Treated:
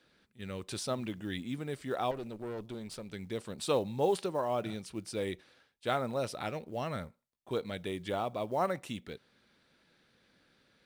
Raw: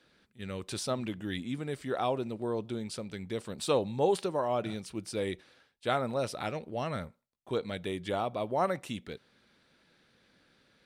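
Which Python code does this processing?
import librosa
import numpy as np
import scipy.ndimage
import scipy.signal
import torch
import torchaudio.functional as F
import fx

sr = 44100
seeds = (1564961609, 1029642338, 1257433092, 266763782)

y = fx.quant_float(x, sr, bits=4)
y = fx.tube_stage(y, sr, drive_db=33.0, bias=0.5, at=(2.11, 3.12))
y = y * 10.0 ** (-2.0 / 20.0)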